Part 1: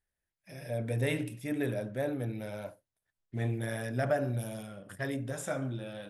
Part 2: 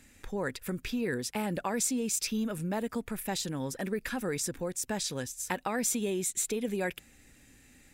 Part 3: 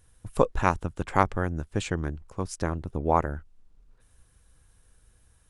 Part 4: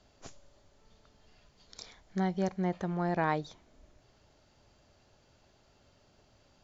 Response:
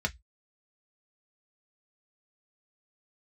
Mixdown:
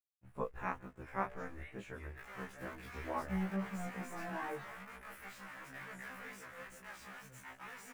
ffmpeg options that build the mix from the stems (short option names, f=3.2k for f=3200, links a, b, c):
-filter_complex "[0:a]acompressor=threshold=-39dB:ratio=6,adelay=550,volume=0dB[a];[1:a]lowshelf=f=240:g=11,alimiter=level_in=2.5dB:limit=-24dB:level=0:latency=1:release=15,volume=-2.5dB,acrusher=bits=5:mix=0:aa=0.000001,adelay=1950,volume=1.5dB,asplit=2[b][c];[c]volume=-22dB[d];[2:a]acrusher=bits=7:mix=0:aa=0.000001,adynamicequalizer=threshold=0.0126:dfrequency=2000:dqfactor=0.7:tfrequency=2000:tqfactor=0.7:attack=5:release=100:ratio=0.375:range=3.5:mode=boostabove:tftype=highshelf,volume=-12dB,asplit=2[e][f];[f]volume=-23.5dB[g];[3:a]volume=35.5dB,asoftclip=hard,volume=-35.5dB,adelay=1150,volume=1.5dB[h];[a][b]amix=inputs=2:normalize=0,highpass=1.1k,alimiter=level_in=7.5dB:limit=-24dB:level=0:latency=1,volume=-7.5dB,volume=0dB[i];[d][g]amix=inputs=2:normalize=0,aecho=0:1:164|328|492|656|820|984:1|0.42|0.176|0.0741|0.0311|0.0131[j];[e][h][i][j]amix=inputs=4:normalize=0,highshelf=f=2.8k:t=q:w=1.5:g=-12,flanger=delay=20:depth=7.3:speed=2.2,afftfilt=real='re*1.73*eq(mod(b,3),0)':imag='im*1.73*eq(mod(b,3),0)':win_size=2048:overlap=0.75"